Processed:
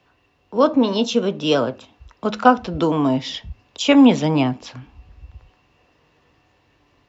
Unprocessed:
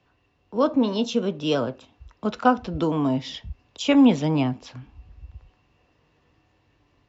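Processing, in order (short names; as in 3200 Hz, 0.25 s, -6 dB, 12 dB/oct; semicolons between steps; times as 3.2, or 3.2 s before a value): low shelf 230 Hz -5.5 dB; de-hum 105.9 Hz, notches 3; gain +6.5 dB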